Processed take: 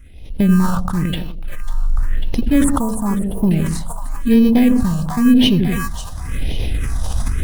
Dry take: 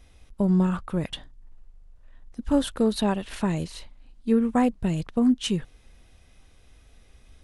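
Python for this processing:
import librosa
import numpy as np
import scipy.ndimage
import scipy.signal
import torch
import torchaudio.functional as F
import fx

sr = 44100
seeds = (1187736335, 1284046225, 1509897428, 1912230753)

p1 = np.where(x < 0.0, 10.0 ** (-3.0 / 20.0) * x, x)
p2 = fx.recorder_agc(p1, sr, target_db=-22.0, rise_db_per_s=29.0, max_gain_db=30)
p3 = fx.sample_hold(p2, sr, seeds[0], rate_hz=1400.0, jitter_pct=0)
p4 = p2 + F.gain(torch.from_numpy(p3), -5.0).numpy()
p5 = fx.ellip_bandstop(p4, sr, low_hz=1200.0, high_hz=7700.0, order=3, stop_db=40, at=(2.64, 3.51))
p6 = p5 + fx.echo_split(p5, sr, split_hz=660.0, low_ms=83, high_ms=546, feedback_pct=52, wet_db=-8.0, dry=0)
p7 = fx.phaser_stages(p6, sr, stages=4, low_hz=360.0, high_hz=1400.0, hz=0.95, feedback_pct=20)
p8 = fx.sustainer(p7, sr, db_per_s=27.0)
y = F.gain(torch.from_numpy(p8), 6.5).numpy()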